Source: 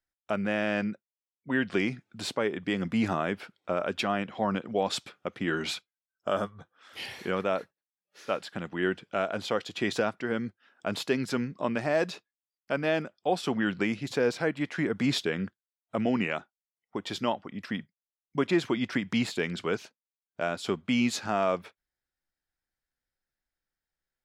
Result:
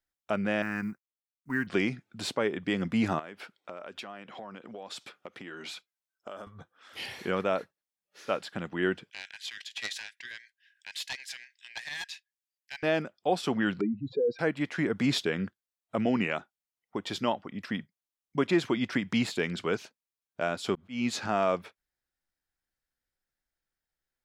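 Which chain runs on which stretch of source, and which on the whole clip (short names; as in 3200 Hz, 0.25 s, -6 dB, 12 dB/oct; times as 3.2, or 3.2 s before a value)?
0.62–1.67 G.711 law mismatch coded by A + fixed phaser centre 1400 Hz, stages 4
3.19–6.47 compressor, threshold -37 dBFS + HPF 320 Hz 6 dB/oct
9.1–12.83 Chebyshev high-pass 1600 Hz, order 8 + Doppler distortion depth 0.63 ms
13.81–14.39 spectral contrast raised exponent 3.3 + LPF 1100 Hz 6 dB/oct
20.75–21.33 high shelf 8000 Hz -7.5 dB + upward compressor, threshold -30 dBFS + auto swell 0.242 s
whole clip: dry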